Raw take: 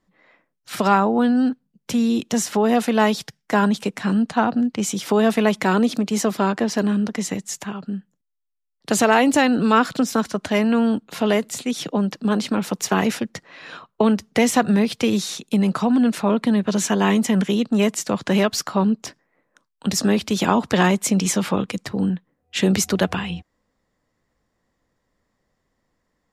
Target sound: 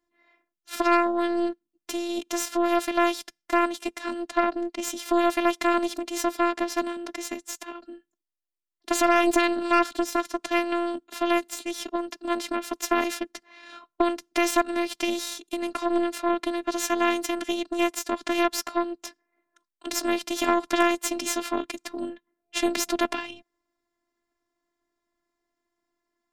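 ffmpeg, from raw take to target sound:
-af "afftfilt=real='hypot(re,im)*cos(PI*b)':imag='0':win_size=512:overlap=0.75,aeval=exprs='0.562*(cos(1*acos(clip(val(0)/0.562,-1,1)))-cos(1*PI/2))+0.0708*(cos(3*acos(clip(val(0)/0.562,-1,1)))-cos(3*PI/2))+0.0631*(cos(6*acos(clip(val(0)/0.562,-1,1)))-cos(6*PI/2))':c=same,lowshelf=f=140:t=q:w=1.5:g=-8"

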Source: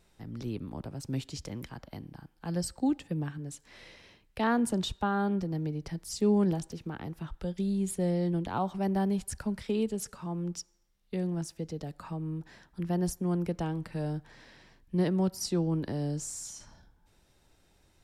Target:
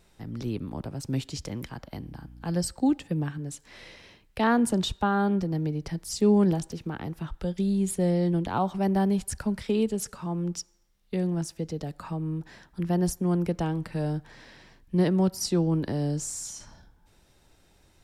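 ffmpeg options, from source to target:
-filter_complex "[0:a]asettb=1/sr,asplit=3[a][b][c];[a]atrim=end=1.954[d];[b]atrim=start=1.95:end=2.52,asetpts=PTS-STARTPTS,afade=t=in:d=0.004:c=qsin,afade=t=out:st=0.566:d=0.004:c=qsin,aeval=exprs='val(0)+0.00316*(sin(2*PI*60*n/s)+sin(2*PI*2*60*n/s)/2+sin(2*PI*3*60*n/s)/3+sin(2*PI*4*60*n/s)/4+sin(2*PI*5*60*n/s)/5)':c=same[e];[c]atrim=start=2.516[f];[d][e]acrossfade=d=0.004:c1=hsin:c2=qsin[g];[g][f]acrossfade=d=0.004:c1=qsin:c2=hsin,volume=4.5dB"

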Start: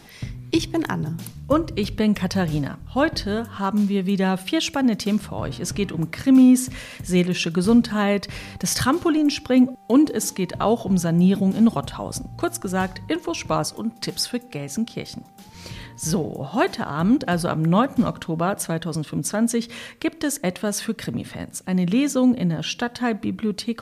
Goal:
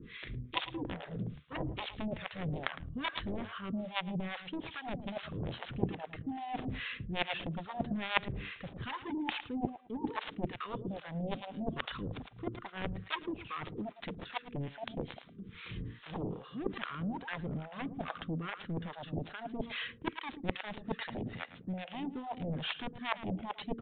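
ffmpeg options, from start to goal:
-filter_complex "[0:a]areverse,acompressor=threshold=-26dB:ratio=10,areverse,asuperstop=centerf=730:order=8:qfactor=1.2,aeval=exprs='0.15*(cos(1*acos(clip(val(0)/0.15,-1,1)))-cos(1*PI/2))+0.0668*(cos(3*acos(clip(val(0)/0.15,-1,1)))-cos(3*PI/2))':c=same,asplit=2[a][b];[b]aecho=0:1:109|218:0.237|0.0427[c];[a][c]amix=inputs=2:normalize=0,acrossover=split=640[d][e];[d]aeval=exprs='val(0)*(1-1/2+1/2*cos(2*PI*2.4*n/s))':c=same[f];[e]aeval=exprs='val(0)*(1-1/2-1/2*cos(2*PI*2.4*n/s))':c=same[g];[f][g]amix=inputs=2:normalize=0,aresample=8000,aresample=44100,volume=10.5dB"

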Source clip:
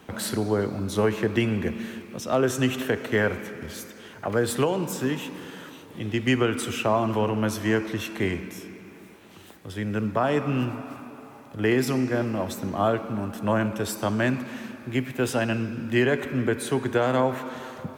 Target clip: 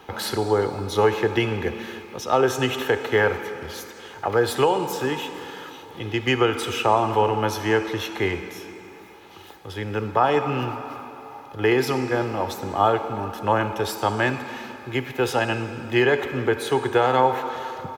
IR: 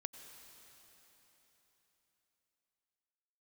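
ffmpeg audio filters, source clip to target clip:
-filter_complex "[0:a]aecho=1:1:2.4:0.45,asplit=2[a][b];[b]highpass=400,equalizer=f=880:t=q:w=4:g=9,equalizer=f=1.9k:t=q:w=4:g=-7,equalizer=f=2.7k:t=q:w=4:g=-4,lowpass=f=8.4k:w=0.5412,lowpass=f=8.4k:w=1.3066[c];[1:a]atrim=start_sample=2205,asetrate=83790,aresample=44100[d];[c][d]afir=irnorm=-1:irlink=0,volume=7dB[e];[a][e]amix=inputs=2:normalize=0"

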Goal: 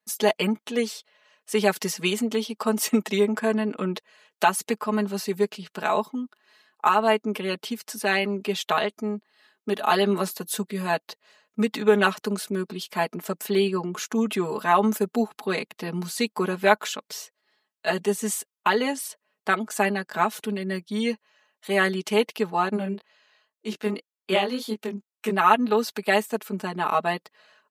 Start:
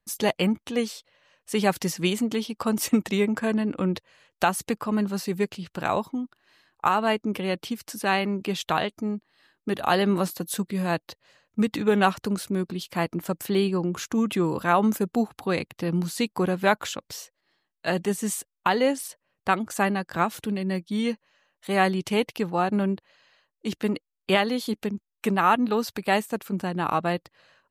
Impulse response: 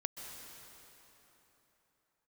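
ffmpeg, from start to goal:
-filter_complex "[0:a]highpass=280,aecho=1:1:4.7:0.98,asplit=3[a][b][c];[a]afade=t=out:st=22.76:d=0.02[d];[b]flanger=delay=18.5:depth=6.5:speed=1.9,afade=t=in:st=22.76:d=0.02,afade=t=out:st=25.31:d=0.02[e];[c]afade=t=in:st=25.31:d=0.02[f];[d][e][f]amix=inputs=3:normalize=0,volume=-1dB"

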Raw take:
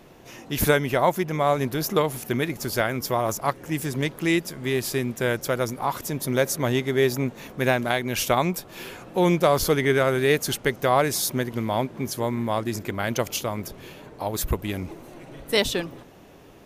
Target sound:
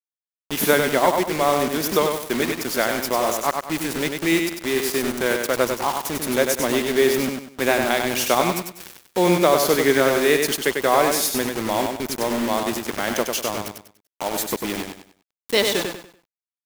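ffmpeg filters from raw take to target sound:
-af "highpass=f=190:w=0.5412,highpass=f=190:w=1.3066,acrusher=bits=4:mix=0:aa=0.000001,aecho=1:1:97|194|291|388:0.562|0.18|0.0576|0.0184,volume=2dB"

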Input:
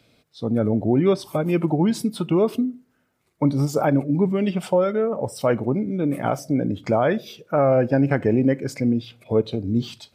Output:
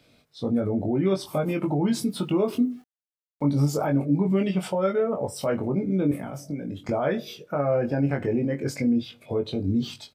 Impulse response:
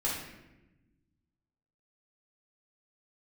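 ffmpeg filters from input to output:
-filter_complex "[0:a]alimiter=limit=-15.5dB:level=0:latency=1:release=82,asettb=1/sr,asplit=3[a][b][c];[a]atrim=end=1.894[d];[b]atrim=start=1.89:end=3.45,asetpts=PTS-STARTPTS,afade=t=in:d=0.004:c=qsin,afade=t=out:st=1.556:d=0.004:c=qsin,aeval=exprs='val(0)*gte(abs(val(0)),0.00251)':c=same[e];[c]atrim=start=3.446[f];[d][e]acrossfade=d=0.004:c1=hsin:c2=qsin[g];[g][f]acrossfade=d=0.004:c1=qsin:c2=hsin,asettb=1/sr,asplit=3[h][i][j];[h]atrim=end=6.114[k];[i]atrim=start=6.11:end=6.89,asetpts=PTS-STARTPTS,afade=t=in:d=0.004:c=qsin,afade=t=out:st=0.776:d=0.004:c=qsin,acrossover=split=280|1500|7000[l][m][n][o];[l]acompressor=threshold=-33dB:ratio=4[p];[m]acompressor=threshold=-38dB:ratio=4[q];[n]acompressor=threshold=-49dB:ratio=4[r];[o]acompressor=threshold=-50dB:ratio=4[s];[p][q][r][s]amix=inputs=4:normalize=0[t];[j]atrim=start=6.886[u];[k][t]acrossfade=d=0.004:c1=hsin:c2=qsin[v];[v][u]acrossfade=d=0.004:c1=qsin:c2=hsin,asplit=2[w][x];[x]adelay=21,volume=-4dB[y];[w][y]amix=inputs=2:normalize=0,volume=-1.5dB"

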